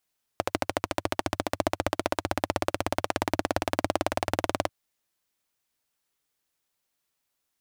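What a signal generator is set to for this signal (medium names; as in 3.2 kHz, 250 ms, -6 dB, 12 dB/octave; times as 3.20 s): single-cylinder engine model, changing speed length 4.29 s, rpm 1600, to 2300, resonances 96/310/590 Hz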